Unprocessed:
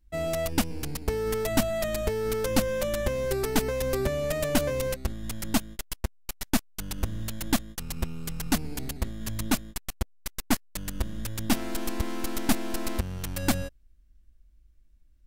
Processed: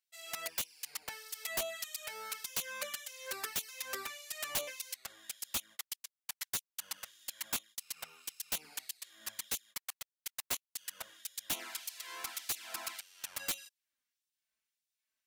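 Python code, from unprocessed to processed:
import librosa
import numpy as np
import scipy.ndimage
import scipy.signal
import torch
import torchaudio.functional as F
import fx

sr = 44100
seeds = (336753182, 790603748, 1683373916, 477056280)

y = fx.filter_lfo_highpass(x, sr, shape='sine', hz=1.7, low_hz=960.0, high_hz=3900.0, q=0.78)
y = fx.env_flanger(y, sr, rest_ms=4.6, full_db=-29.0)
y = (np.mod(10.0 ** (25.5 / 20.0) * y + 1.0, 2.0) - 1.0) / 10.0 ** (25.5 / 20.0)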